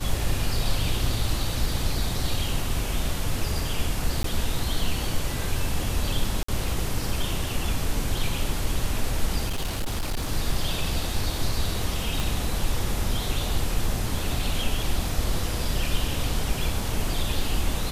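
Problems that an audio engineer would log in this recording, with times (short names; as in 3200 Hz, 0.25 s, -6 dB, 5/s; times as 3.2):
4.23–4.24 gap 13 ms
6.43–6.48 gap 54 ms
9.46–10.32 clipped -23 dBFS
12.2 pop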